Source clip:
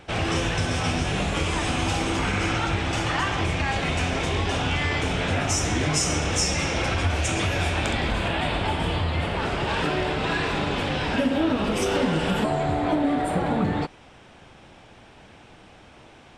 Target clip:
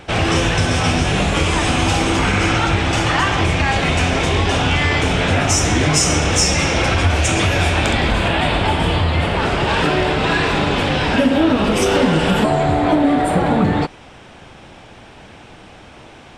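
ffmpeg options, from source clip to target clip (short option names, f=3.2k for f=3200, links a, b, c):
-af "acontrast=49,volume=2.5dB"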